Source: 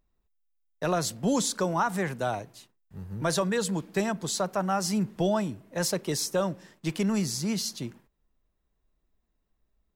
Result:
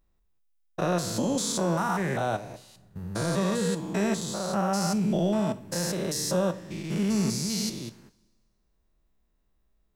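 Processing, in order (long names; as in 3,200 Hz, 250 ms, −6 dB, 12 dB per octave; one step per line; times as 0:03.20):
spectrum averaged block by block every 200 ms
coupled-rooms reverb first 0.41 s, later 1.6 s, from −18 dB, DRR 11 dB
level +4 dB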